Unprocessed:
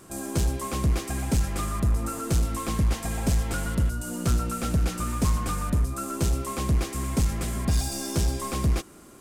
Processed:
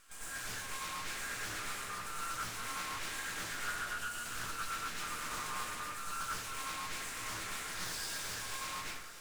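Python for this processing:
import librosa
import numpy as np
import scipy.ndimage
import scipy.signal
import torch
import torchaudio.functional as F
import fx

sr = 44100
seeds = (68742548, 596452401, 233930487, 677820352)

y = scipy.signal.sosfilt(scipy.signal.cheby2(4, 50, 540.0, 'highpass', fs=sr, output='sos'), x)
y = fx.high_shelf(y, sr, hz=5700.0, db=-9.0)
y = np.clip(y, -10.0 ** (-39.5 / 20.0), 10.0 ** (-39.5 / 20.0))
y = fx.echo_wet_highpass(y, sr, ms=280, feedback_pct=71, hz=2500.0, wet_db=-12.5)
y = np.maximum(y, 0.0)
y = fx.rev_plate(y, sr, seeds[0], rt60_s=1.1, hf_ratio=0.4, predelay_ms=80, drr_db=-8.0)
y = fx.doppler_dist(y, sr, depth_ms=0.39)
y = y * 10.0 ** (1.0 / 20.0)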